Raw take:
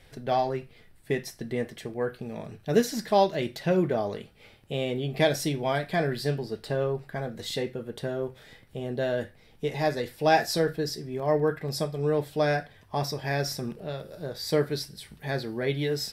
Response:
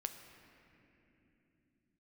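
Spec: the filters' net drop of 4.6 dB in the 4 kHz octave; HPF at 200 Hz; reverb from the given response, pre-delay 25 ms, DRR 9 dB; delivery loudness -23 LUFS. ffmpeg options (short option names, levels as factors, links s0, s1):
-filter_complex "[0:a]highpass=200,equalizer=f=4000:t=o:g=-6,asplit=2[s0][s1];[1:a]atrim=start_sample=2205,adelay=25[s2];[s1][s2]afir=irnorm=-1:irlink=0,volume=0.422[s3];[s0][s3]amix=inputs=2:normalize=0,volume=2.11"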